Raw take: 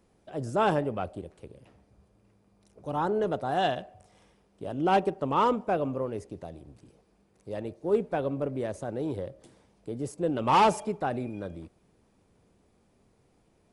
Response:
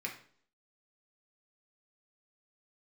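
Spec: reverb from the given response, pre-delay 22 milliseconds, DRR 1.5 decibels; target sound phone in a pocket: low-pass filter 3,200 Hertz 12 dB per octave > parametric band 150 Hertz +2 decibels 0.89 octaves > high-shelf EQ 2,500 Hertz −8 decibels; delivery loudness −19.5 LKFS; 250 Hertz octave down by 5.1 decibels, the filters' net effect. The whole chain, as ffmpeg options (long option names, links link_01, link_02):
-filter_complex "[0:a]equalizer=frequency=250:width_type=o:gain=-8,asplit=2[link_01][link_02];[1:a]atrim=start_sample=2205,adelay=22[link_03];[link_02][link_03]afir=irnorm=-1:irlink=0,volume=-3.5dB[link_04];[link_01][link_04]amix=inputs=2:normalize=0,lowpass=3200,equalizer=frequency=150:width_type=o:width=0.89:gain=2,highshelf=frequency=2500:gain=-8,volume=10.5dB"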